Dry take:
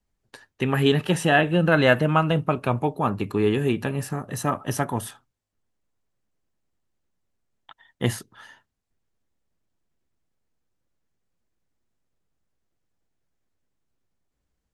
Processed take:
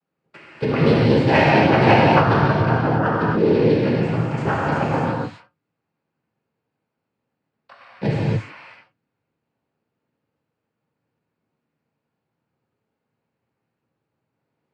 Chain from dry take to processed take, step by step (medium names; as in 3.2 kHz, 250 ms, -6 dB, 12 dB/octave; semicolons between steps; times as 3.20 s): low-pass 2.1 kHz 12 dB/octave; in parallel at -1 dB: compression, threshold -28 dBFS, peak gain reduction 14.5 dB; on the sum: noise-vocoded speech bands 8; gated-style reverb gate 310 ms flat, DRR -5.5 dB; trim -2.5 dB